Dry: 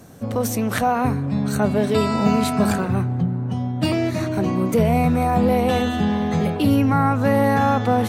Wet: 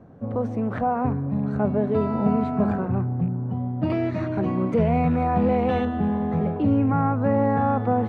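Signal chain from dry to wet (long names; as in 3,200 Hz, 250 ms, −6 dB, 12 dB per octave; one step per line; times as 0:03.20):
loose part that buzzes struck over −17 dBFS, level −29 dBFS
low-pass filter 1,100 Hz 12 dB per octave, from 0:03.90 2,100 Hz, from 0:05.85 1,200 Hz
level −3 dB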